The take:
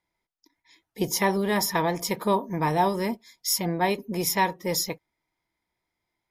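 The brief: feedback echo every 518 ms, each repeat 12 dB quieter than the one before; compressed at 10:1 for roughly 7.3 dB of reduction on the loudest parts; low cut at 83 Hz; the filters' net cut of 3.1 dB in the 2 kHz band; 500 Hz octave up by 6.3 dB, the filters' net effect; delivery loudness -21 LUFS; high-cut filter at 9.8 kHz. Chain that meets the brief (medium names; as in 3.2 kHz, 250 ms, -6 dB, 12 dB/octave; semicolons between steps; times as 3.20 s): high-pass 83 Hz; low-pass 9.8 kHz; peaking EQ 500 Hz +8.5 dB; peaking EQ 2 kHz -4 dB; compression 10:1, threshold -22 dBFS; feedback delay 518 ms, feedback 25%, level -12 dB; trim +6.5 dB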